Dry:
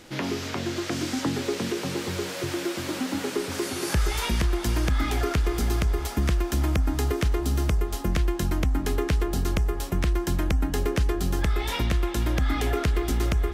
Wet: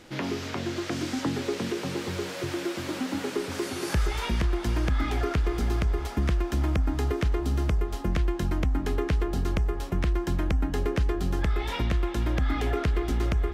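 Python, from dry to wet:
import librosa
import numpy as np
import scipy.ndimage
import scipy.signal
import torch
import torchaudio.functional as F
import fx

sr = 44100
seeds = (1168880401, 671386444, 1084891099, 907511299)

y = fx.high_shelf(x, sr, hz=5700.0, db=fx.steps((0.0, -6.0), (4.05, -12.0)))
y = F.gain(torch.from_numpy(y), -1.5).numpy()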